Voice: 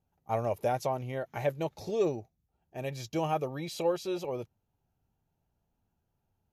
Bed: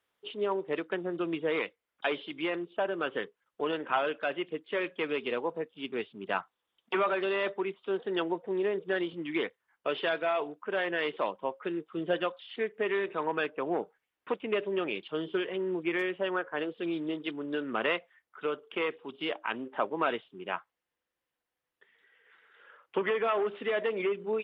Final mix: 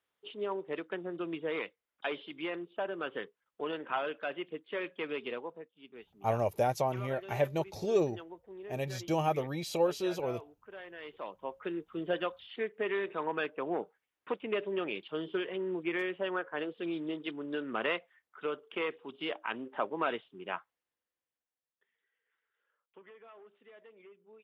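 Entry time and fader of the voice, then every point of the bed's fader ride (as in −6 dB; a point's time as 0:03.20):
5.95 s, +0.5 dB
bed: 0:05.27 −5 dB
0:05.79 −16.5 dB
0:10.95 −16.5 dB
0:11.64 −3 dB
0:20.72 −3 dB
0:22.73 −26 dB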